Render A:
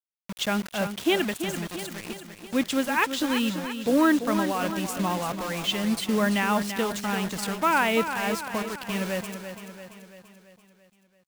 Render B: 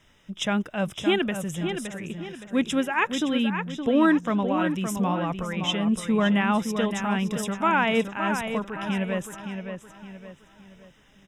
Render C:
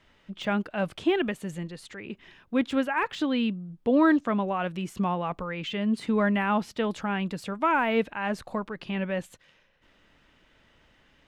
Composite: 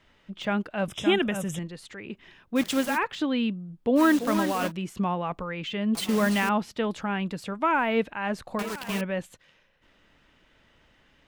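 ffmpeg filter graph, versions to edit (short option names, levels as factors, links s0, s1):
-filter_complex "[0:a]asplit=4[s0][s1][s2][s3];[2:a]asplit=6[s4][s5][s6][s7][s8][s9];[s4]atrim=end=0.882[s10];[1:a]atrim=start=0.878:end=1.592[s11];[s5]atrim=start=1.588:end=2.59[s12];[s0]atrim=start=2.55:end=2.99[s13];[s6]atrim=start=2.95:end=4.01[s14];[s1]atrim=start=3.95:end=4.72[s15];[s7]atrim=start=4.66:end=5.952[s16];[s2]atrim=start=5.948:end=6.492[s17];[s8]atrim=start=6.488:end=8.592[s18];[s3]atrim=start=8.588:end=9.012[s19];[s9]atrim=start=9.008[s20];[s10][s11]acrossfade=d=0.004:c1=hsin:c2=hsin[s21];[s21][s12]acrossfade=d=0.004:c1=hsin:c2=hsin[s22];[s22][s13]acrossfade=d=0.04:c1=tri:c2=tri[s23];[s23][s14]acrossfade=d=0.04:c1=tri:c2=tri[s24];[s24][s15]acrossfade=d=0.06:c1=tri:c2=tri[s25];[s25][s16]acrossfade=d=0.06:c1=tri:c2=tri[s26];[s26][s17]acrossfade=d=0.004:c1=hsin:c2=hsin[s27];[s27][s18]acrossfade=d=0.004:c1=hsin:c2=hsin[s28];[s28][s19]acrossfade=d=0.004:c1=hsin:c2=hsin[s29];[s29][s20]acrossfade=d=0.004:c1=hsin:c2=hsin"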